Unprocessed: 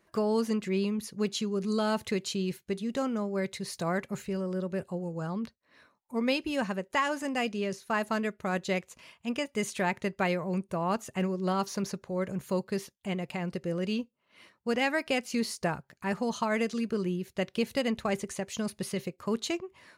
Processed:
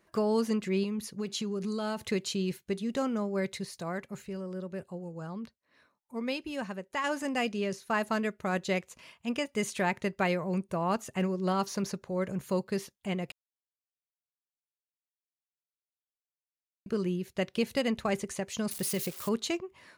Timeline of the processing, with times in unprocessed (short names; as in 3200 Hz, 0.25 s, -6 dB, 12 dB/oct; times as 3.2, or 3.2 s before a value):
0.83–2.1 compressor, threshold -29 dBFS
3.65–7.04 gain -5.5 dB
13.32–16.86 mute
18.71–19.29 switching spikes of -30.5 dBFS